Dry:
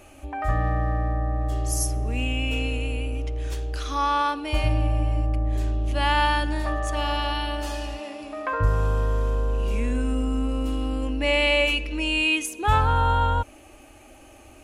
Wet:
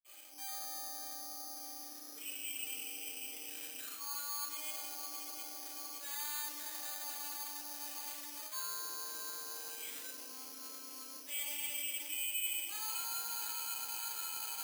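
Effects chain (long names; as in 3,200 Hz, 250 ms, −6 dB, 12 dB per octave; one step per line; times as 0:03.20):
sub-octave generator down 1 octave, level +4 dB
elliptic high-pass filter 270 Hz, stop band 40 dB
feedback delay with all-pass diffusion 622 ms, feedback 56%, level −9 dB
convolution reverb RT60 1.2 s, pre-delay 46 ms
soft clipping −23 dBFS, distortion −16 dB
Butterworth low-pass 4,100 Hz
reversed playback
downward compressor 10 to 1, threshold −41 dBFS, peak gain reduction 15.5 dB
reversed playback
bad sample-rate conversion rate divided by 8×, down filtered, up hold
first difference
level +10.5 dB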